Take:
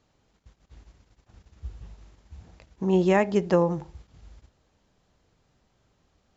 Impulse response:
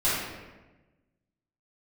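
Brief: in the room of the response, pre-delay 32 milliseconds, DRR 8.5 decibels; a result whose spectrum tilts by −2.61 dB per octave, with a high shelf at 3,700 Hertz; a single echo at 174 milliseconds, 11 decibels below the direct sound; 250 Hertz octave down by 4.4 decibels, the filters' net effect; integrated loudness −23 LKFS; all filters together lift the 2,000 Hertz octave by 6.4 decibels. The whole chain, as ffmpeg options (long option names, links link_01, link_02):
-filter_complex "[0:a]equalizer=frequency=250:width_type=o:gain=-8,equalizer=frequency=2000:width_type=o:gain=9,highshelf=frequency=3700:gain=-7,aecho=1:1:174:0.282,asplit=2[link_01][link_02];[1:a]atrim=start_sample=2205,adelay=32[link_03];[link_02][link_03]afir=irnorm=-1:irlink=0,volume=-22dB[link_04];[link_01][link_04]amix=inputs=2:normalize=0,volume=1.5dB"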